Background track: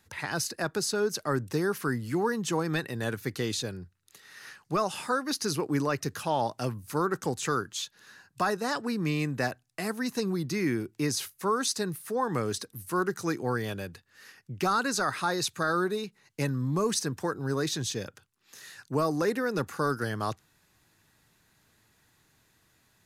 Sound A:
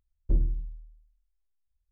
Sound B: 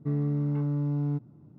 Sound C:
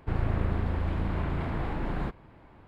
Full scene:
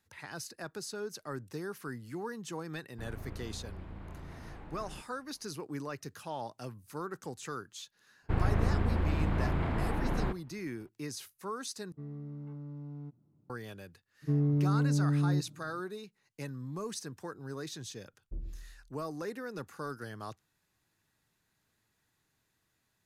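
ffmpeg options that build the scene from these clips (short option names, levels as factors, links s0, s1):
-filter_complex "[3:a]asplit=2[s0][s1];[2:a]asplit=2[s2][s3];[0:a]volume=0.266[s4];[s1]agate=range=0.0224:threshold=0.00501:ratio=3:release=100:detection=peak[s5];[s3]aecho=1:1:6.5:0.85[s6];[1:a]aecho=1:1:123:0.316[s7];[s4]asplit=2[s8][s9];[s8]atrim=end=11.924[s10];[s2]atrim=end=1.58,asetpts=PTS-STARTPTS,volume=0.168[s11];[s9]atrim=start=13.496[s12];[s0]atrim=end=2.67,asetpts=PTS-STARTPTS,volume=0.158,afade=t=in:d=0.004:c=hsin,afade=t=out:st=2.666:d=0.004:c=hsin,adelay=2910[s13];[s5]atrim=end=2.67,asetpts=PTS-STARTPTS,volume=0.944,afade=t=in:d=0.004:c=hsin,afade=t=out:st=2.666:d=0.004:c=hsin,adelay=8220[s14];[s6]atrim=end=1.58,asetpts=PTS-STARTPTS,volume=0.562,afade=t=in:d=0.004:c=hsin,afade=t=out:st=1.576:d=0.004:c=hsin,adelay=14220[s15];[s7]atrim=end=1.91,asetpts=PTS-STARTPTS,volume=0.15,afade=t=in:d=0.004:c=hsin,afade=t=out:st=1.906:d=0.004:c=hsin,adelay=18020[s16];[s10][s11]acrossfade=d=0.004:c1=hsin:c2=hsin[s17];[s17][s12]acrossfade=d=0.004:c1=hsin:c2=hsin[s18];[s18][s13][s14][s15][s16]amix=inputs=5:normalize=0"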